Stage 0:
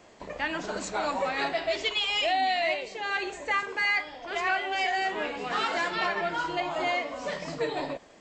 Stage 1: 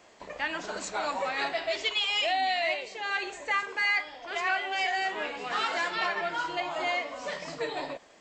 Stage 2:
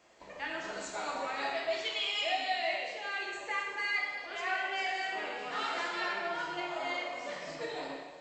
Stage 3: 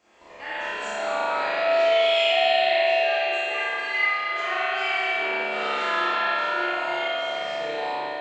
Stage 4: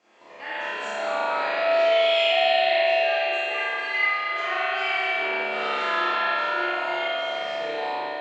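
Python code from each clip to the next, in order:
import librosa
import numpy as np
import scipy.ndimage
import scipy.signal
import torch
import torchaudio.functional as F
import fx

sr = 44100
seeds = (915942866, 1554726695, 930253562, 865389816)

y1 = fx.low_shelf(x, sr, hz=420.0, db=-8.5)
y2 = fx.rev_plate(y1, sr, seeds[0], rt60_s=1.4, hf_ratio=0.95, predelay_ms=0, drr_db=-1.5)
y2 = F.gain(torch.from_numpy(y2), -8.5).numpy()
y3 = fx.room_flutter(y2, sr, wall_m=4.9, rt60_s=0.92)
y3 = fx.rev_spring(y3, sr, rt60_s=3.0, pass_ms=(42,), chirp_ms=75, drr_db=-9.5)
y3 = F.gain(torch.from_numpy(y3), -2.5).numpy()
y4 = fx.bandpass_edges(y3, sr, low_hz=160.0, high_hz=6500.0)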